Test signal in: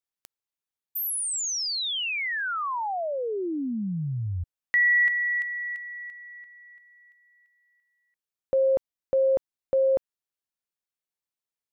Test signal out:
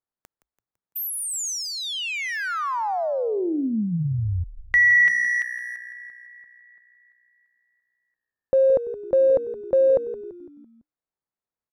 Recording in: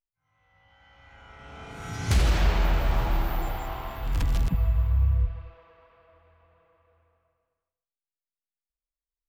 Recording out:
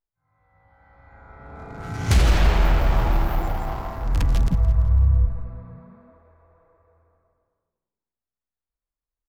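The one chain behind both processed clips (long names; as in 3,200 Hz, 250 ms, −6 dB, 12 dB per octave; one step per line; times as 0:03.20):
adaptive Wiener filter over 15 samples
echo with shifted repeats 168 ms, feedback 51%, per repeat −61 Hz, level −14 dB
level +5 dB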